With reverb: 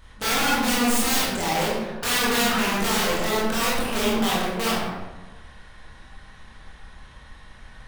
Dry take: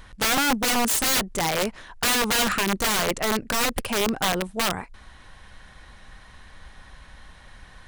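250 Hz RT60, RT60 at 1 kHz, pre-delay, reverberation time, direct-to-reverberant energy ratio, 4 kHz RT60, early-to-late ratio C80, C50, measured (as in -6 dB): 1.5 s, 1.1 s, 19 ms, 1.2 s, -7.5 dB, 0.65 s, 2.0 dB, -1.5 dB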